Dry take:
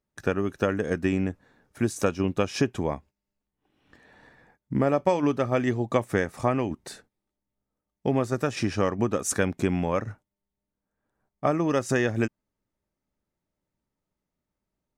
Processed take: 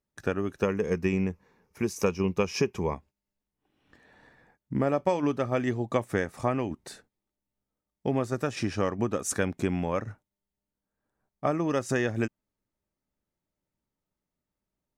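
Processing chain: 0.62–2.95 s: rippled EQ curve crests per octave 0.81, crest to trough 9 dB; trim -3 dB

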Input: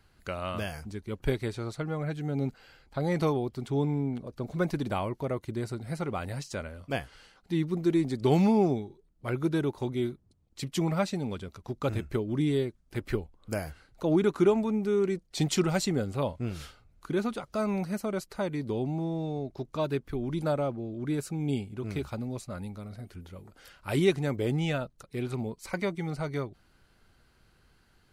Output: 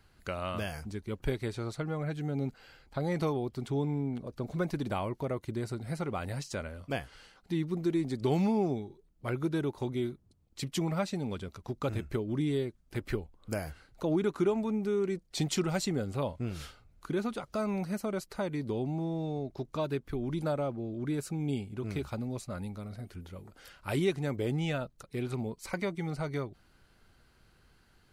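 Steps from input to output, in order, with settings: compression 1.5:1, threshold -33 dBFS, peak gain reduction 6 dB

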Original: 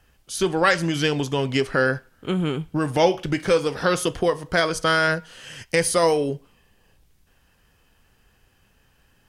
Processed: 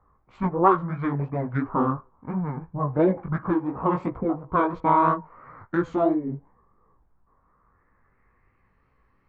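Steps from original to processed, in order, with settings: local Wiener filter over 9 samples; formant shift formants -6 st; low-pass sweep 1.1 kHz -> 3.2 kHz, 7.38–8.83 s; chorus 2.9 Hz, delay 15.5 ms, depth 6.6 ms; trim -1 dB

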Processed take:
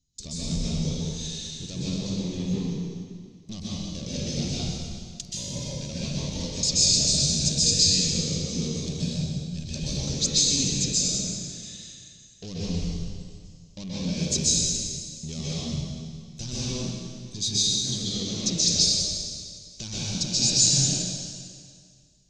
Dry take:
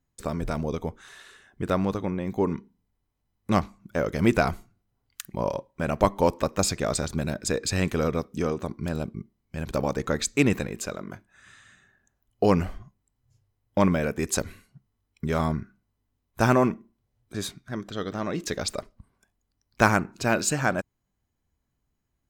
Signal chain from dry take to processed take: compression, threshold -23 dBFS, peak gain reduction 10 dB; saturation -30 dBFS, distortion -7 dB; FFT filter 170 Hz 0 dB, 1.5 kHz -23 dB, 4 kHz +11 dB, 6.4 kHz +14 dB, 14 kHz -29 dB; plate-style reverb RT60 2 s, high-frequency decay 0.95×, pre-delay 115 ms, DRR -9 dB

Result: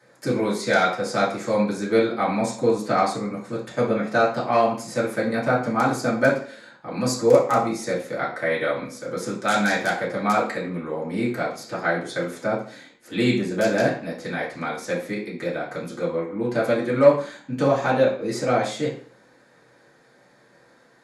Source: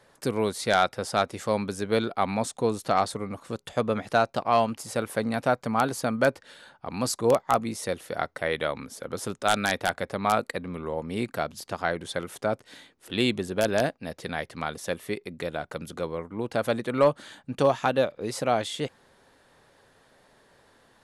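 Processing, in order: peaking EQ 3.2 kHz -6 dB 0.59 oct; reverberation RT60 0.50 s, pre-delay 3 ms, DRR -7.5 dB; trim -4 dB

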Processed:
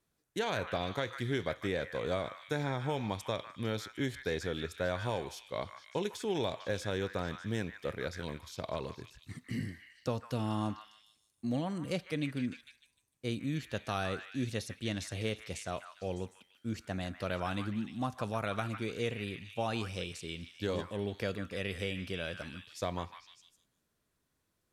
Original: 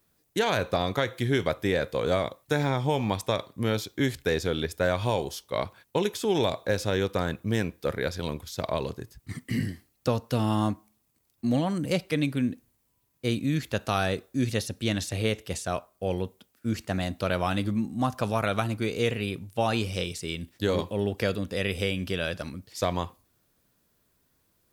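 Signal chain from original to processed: low-pass 11 kHz 12 dB/octave; band-stop 4.9 kHz, Q 27; repeats whose band climbs or falls 151 ms, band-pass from 1.5 kHz, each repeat 0.7 oct, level -5 dB; trim -8.5 dB

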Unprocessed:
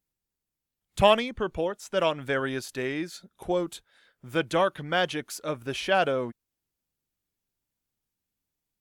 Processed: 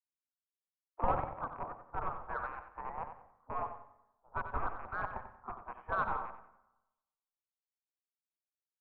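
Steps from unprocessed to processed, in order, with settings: rattle on loud lows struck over -36 dBFS, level -17 dBFS; elliptic low-pass 910 Hz, stop band 80 dB; spectral gate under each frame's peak -25 dB weak; peaking EQ 290 Hz -7.5 dB 2 oct; saturation -38 dBFS, distortion -24 dB; feedback delay 92 ms, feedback 41%, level -8 dB; on a send at -15 dB: reverberation RT60 1.8 s, pre-delay 97 ms; on the sum: three bands expanded up and down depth 70%; trim +16.5 dB

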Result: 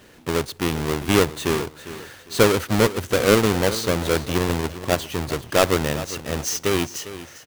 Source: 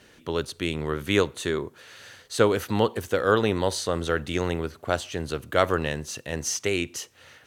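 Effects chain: square wave that keeps the level; feedback delay 402 ms, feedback 32%, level -14.5 dB

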